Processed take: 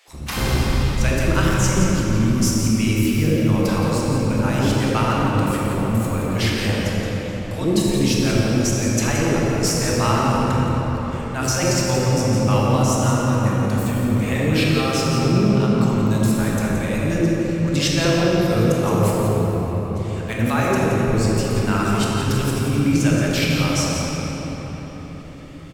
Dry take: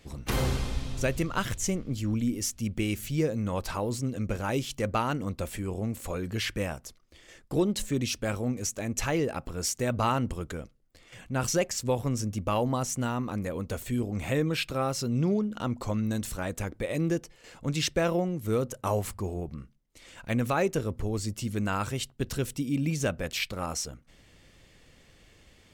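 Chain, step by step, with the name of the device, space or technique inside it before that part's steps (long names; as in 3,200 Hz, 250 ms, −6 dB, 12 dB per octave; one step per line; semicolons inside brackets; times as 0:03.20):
cave (single-tap delay 172 ms −8.5 dB; convolution reverb RT60 5.2 s, pre-delay 16 ms, DRR −4 dB)
dynamic equaliser 5,100 Hz, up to +4 dB, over −53 dBFS, Q 7.3
multiband delay without the direct sound highs, lows 80 ms, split 610 Hz
level +5 dB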